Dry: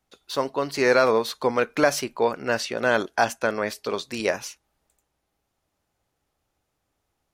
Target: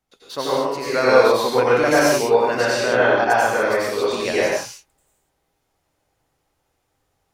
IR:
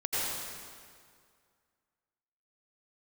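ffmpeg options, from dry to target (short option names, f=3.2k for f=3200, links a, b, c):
-filter_complex "[0:a]asettb=1/sr,asplit=3[a][b][c];[a]atrim=end=0.504[d];[b]atrim=start=0.5:end=0.94,asetpts=PTS-STARTPTS,afade=t=in:d=0.004:c=qsin,afade=t=out:st=0.436:d=0.004:c=qsin,acompressor=threshold=-29dB:ratio=6[e];[c]atrim=start=0.936[f];[d][e]acrossfade=d=0.004:c1=hsin:c2=qsin[g];[g][f]acrossfade=d=0.004:c1=qsin:c2=hsin,asettb=1/sr,asplit=3[h][i][j];[h]atrim=end=2.824[k];[i]atrim=start=2.82:end=3.3,asetpts=PTS-STARTPTS,afade=t=in:d=0.004:c=qsin,afade=t=out:st=0.476:d=0.004:c=qsin,lowpass=3.4k[l];[j]atrim=start=3.296[m];[k][l]acrossfade=d=0.004:c1=hsin:c2=qsin[n];[n][m]acrossfade=d=0.004:c1=qsin:c2=hsin[o];[1:a]atrim=start_sample=2205,afade=t=out:st=0.35:d=0.01,atrim=end_sample=15876[p];[o][p]afir=irnorm=-1:irlink=0,volume=-1.5dB"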